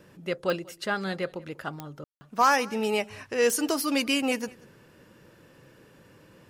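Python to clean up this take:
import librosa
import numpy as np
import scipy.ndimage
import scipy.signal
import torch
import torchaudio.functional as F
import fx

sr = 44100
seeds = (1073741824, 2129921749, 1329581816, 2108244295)

y = fx.fix_declip(x, sr, threshold_db=-11.5)
y = fx.fix_declick_ar(y, sr, threshold=10.0)
y = fx.fix_ambience(y, sr, seeds[0], print_start_s=4.71, print_end_s=5.21, start_s=2.04, end_s=2.21)
y = fx.fix_echo_inverse(y, sr, delay_ms=190, level_db=-23.5)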